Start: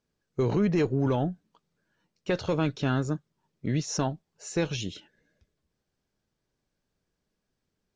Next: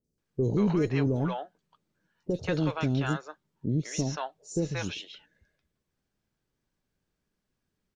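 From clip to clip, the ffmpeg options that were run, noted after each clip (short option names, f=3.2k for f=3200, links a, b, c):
-filter_complex "[0:a]acrossover=split=580|5100[a][b][c];[c]adelay=40[d];[b]adelay=180[e];[a][e][d]amix=inputs=3:normalize=0"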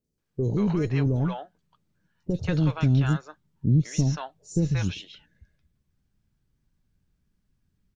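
-af "asubboost=boost=5:cutoff=200"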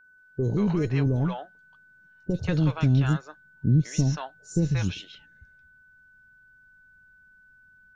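-af "aeval=exprs='val(0)+0.002*sin(2*PI*1500*n/s)':c=same"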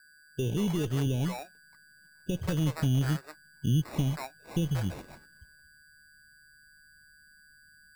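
-filter_complex "[0:a]asplit=2[a][b];[b]acompressor=threshold=-30dB:ratio=6,volume=-2dB[c];[a][c]amix=inputs=2:normalize=0,acrusher=samples=14:mix=1:aa=0.000001,volume=-7dB"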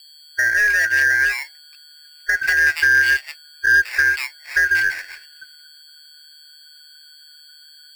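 -af "afftfilt=real='real(if(lt(b,272),68*(eq(floor(b/68),0)*2+eq(floor(b/68),1)*0+eq(floor(b/68),2)*3+eq(floor(b/68),3)*1)+mod(b,68),b),0)':imag='imag(if(lt(b,272),68*(eq(floor(b/68),0)*2+eq(floor(b/68),1)*0+eq(floor(b/68),2)*3+eq(floor(b/68),3)*1)+mod(b,68),b),0)':win_size=2048:overlap=0.75,bandreject=f=156.5:t=h:w=4,bandreject=f=313:t=h:w=4,bandreject=f=469.5:t=h:w=4,bandreject=f=626:t=h:w=4,bandreject=f=782.5:t=h:w=4,aeval=exprs='0.188*sin(PI/2*1.41*val(0)/0.188)':c=same,volume=5.5dB"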